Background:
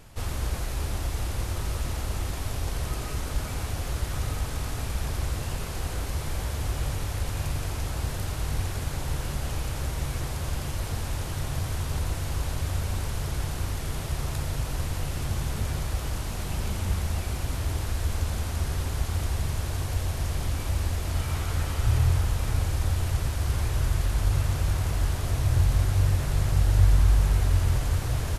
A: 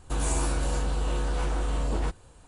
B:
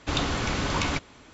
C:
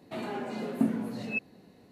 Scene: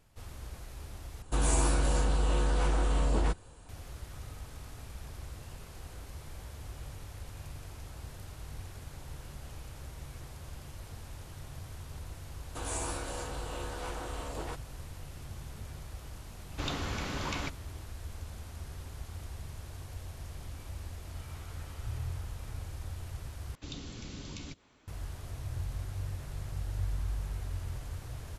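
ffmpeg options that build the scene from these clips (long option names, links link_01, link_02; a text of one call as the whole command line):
ffmpeg -i bed.wav -i cue0.wav -i cue1.wav -filter_complex "[1:a]asplit=2[link_01][link_02];[2:a]asplit=2[link_03][link_04];[0:a]volume=-15dB[link_05];[link_02]bass=frequency=250:gain=-12,treble=frequency=4000:gain=0[link_06];[link_04]acrossover=split=400|3000[link_07][link_08][link_09];[link_08]acompressor=threshold=-44dB:ratio=6:attack=3.2:release=140:knee=2.83:detection=peak[link_10];[link_07][link_10][link_09]amix=inputs=3:normalize=0[link_11];[link_05]asplit=3[link_12][link_13][link_14];[link_12]atrim=end=1.224[link_15];[link_01]atrim=end=2.47[link_16];[link_13]atrim=start=3.686:end=23.554[link_17];[link_11]atrim=end=1.33,asetpts=PTS-STARTPTS,volume=-13.5dB[link_18];[link_14]atrim=start=24.876[link_19];[link_06]atrim=end=2.47,asetpts=PTS-STARTPTS,volume=-5dB,afade=type=in:duration=0.004:curve=hsin,afade=type=out:start_time=2.466:duration=0.004:curve=hsin,adelay=12450[link_20];[link_03]atrim=end=1.33,asetpts=PTS-STARTPTS,volume=-9dB,afade=type=in:duration=0.004:curve=hsin,afade=type=out:start_time=1.326:duration=0.004:curve=hsin,adelay=16510[link_21];[link_15][link_16]acrossfade=duration=0.004:curve1=hsin:curve2=hsin[link_22];[link_22][link_17]acrossfade=duration=0.004:curve1=hsin:curve2=hsin[link_23];[link_23][link_18]acrossfade=duration=0.004:curve1=hsin:curve2=hsin[link_24];[link_24][link_19]acrossfade=duration=0.004:curve1=hsin:curve2=hsin[link_25];[link_25][link_20][link_21]amix=inputs=3:normalize=0" out.wav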